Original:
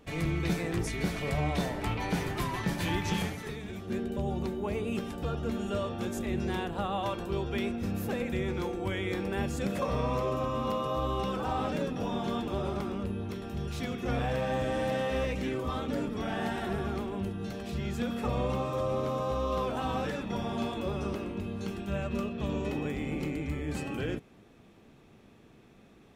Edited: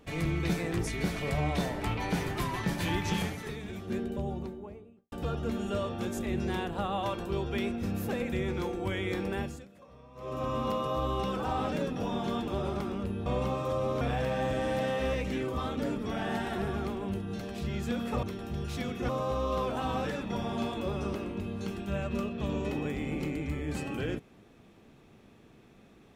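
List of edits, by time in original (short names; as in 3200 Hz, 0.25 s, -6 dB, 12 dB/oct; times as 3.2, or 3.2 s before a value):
3.88–5.12 studio fade out
9.31–10.5 dip -23.5 dB, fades 0.35 s
13.26–14.12 swap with 18.34–19.09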